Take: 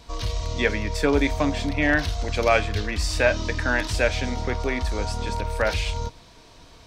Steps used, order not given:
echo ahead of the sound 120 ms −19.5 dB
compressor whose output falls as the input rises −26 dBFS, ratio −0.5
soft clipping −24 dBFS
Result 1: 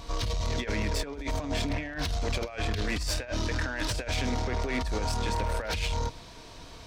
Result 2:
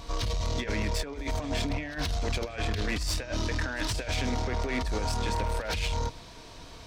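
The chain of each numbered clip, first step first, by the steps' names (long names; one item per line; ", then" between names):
echo ahead of the sound, then compressor whose output falls as the input rises, then soft clipping
compressor whose output falls as the input rises, then echo ahead of the sound, then soft clipping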